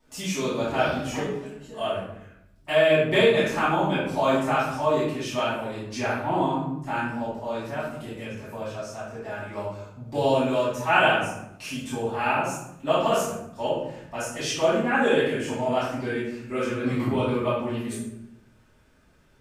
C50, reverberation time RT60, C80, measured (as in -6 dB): 0.0 dB, 0.80 s, 4.0 dB